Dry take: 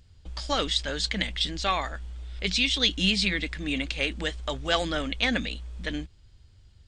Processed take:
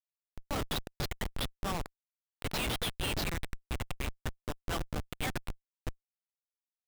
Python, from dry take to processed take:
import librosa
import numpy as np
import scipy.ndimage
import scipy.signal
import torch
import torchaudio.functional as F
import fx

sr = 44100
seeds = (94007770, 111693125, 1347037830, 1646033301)

y = scipy.signal.sosfilt(scipy.signal.butter(2, 750.0, 'highpass', fs=sr, output='sos'), x)
y = y + 0.35 * np.pad(y, (int(6.8 * sr / 1000.0), 0))[:len(y)]
y = fx.schmitt(y, sr, flips_db=-23.5)
y = y * 10.0 ** (-1.5 / 20.0)